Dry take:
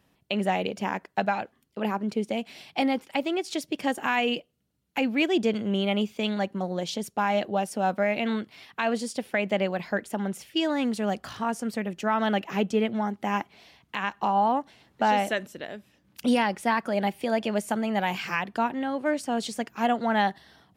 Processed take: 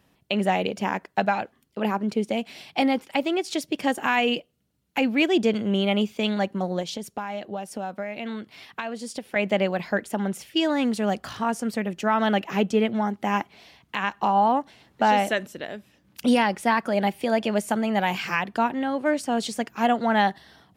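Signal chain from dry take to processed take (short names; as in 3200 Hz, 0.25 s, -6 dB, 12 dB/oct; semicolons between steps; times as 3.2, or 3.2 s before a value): 6.81–9.36 compressor 6:1, threshold -32 dBFS, peak gain reduction 11.5 dB; gain +3 dB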